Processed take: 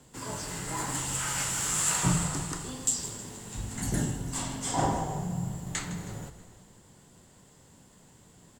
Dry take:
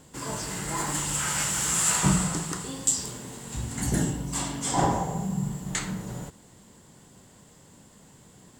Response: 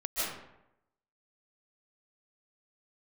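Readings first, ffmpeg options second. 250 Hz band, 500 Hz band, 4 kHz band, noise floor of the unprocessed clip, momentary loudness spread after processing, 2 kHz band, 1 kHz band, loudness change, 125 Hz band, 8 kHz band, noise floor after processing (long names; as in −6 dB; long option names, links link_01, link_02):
−4.5 dB, −3.5 dB, −3.5 dB, −54 dBFS, 13 LU, −3.5 dB, −3.5 dB, −3.5 dB, −3.0 dB, −3.5 dB, −58 dBFS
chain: -filter_complex "[0:a]afreqshift=-14,asplit=6[link_01][link_02][link_03][link_04][link_05][link_06];[link_02]adelay=159,afreqshift=-51,volume=-14dB[link_07];[link_03]adelay=318,afreqshift=-102,volume=-20dB[link_08];[link_04]adelay=477,afreqshift=-153,volume=-26dB[link_09];[link_05]adelay=636,afreqshift=-204,volume=-32.1dB[link_10];[link_06]adelay=795,afreqshift=-255,volume=-38.1dB[link_11];[link_01][link_07][link_08][link_09][link_10][link_11]amix=inputs=6:normalize=0,asplit=2[link_12][link_13];[1:a]atrim=start_sample=2205,asetrate=26019,aresample=44100[link_14];[link_13][link_14]afir=irnorm=-1:irlink=0,volume=-28dB[link_15];[link_12][link_15]amix=inputs=2:normalize=0,volume=-4dB"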